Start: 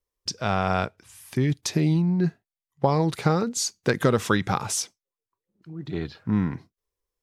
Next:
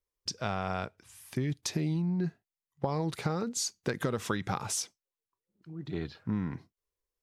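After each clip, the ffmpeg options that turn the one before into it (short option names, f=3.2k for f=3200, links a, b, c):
-af "acompressor=threshold=-22dB:ratio=6,volume=-5dB"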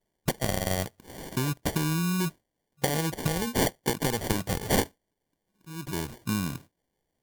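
-af "crystalizer=i=1.5:c=0,acrusher=samples=34:mix=1:aa=0.000001,aemphasis=mode=production:type=cd,volume=3dB"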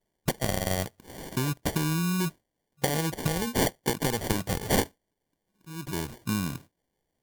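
-af anull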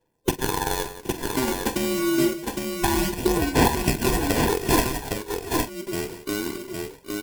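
-filter_complex "[0:a]afftfilt=real='real(if(between(b,1,1008),(2*floor((b-1)/24)+1)*24-b,b),0)':imag='imag(if(between(b,1,1008),(2*floor((b-1)/24)+1)*24-b,b),0)*if(between(b,1,1008),-1,1)':win_size=2048:overlap=0.75,aphaser=in_gain=1:out_gain=1:delay=3.8:decay=0.41:speed=0.28:type=sinusoidal,asplit=2[a][b];[b]aecho=0:1:44|107|175|772|811|857:0.224|0.133|0.2|0.126|0.631|0.15[c];[a][c]amix=inputs=2:normalize=0,volume=2.5dB"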